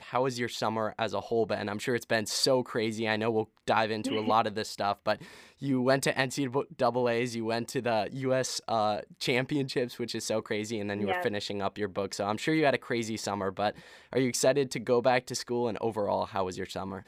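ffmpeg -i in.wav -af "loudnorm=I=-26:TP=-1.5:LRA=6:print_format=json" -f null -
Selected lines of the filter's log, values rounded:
"input_i" : "-29.8",
"input_tp" : "-11.5",
"input_lra" : "1.7",
"input_thresh" : "-39.9",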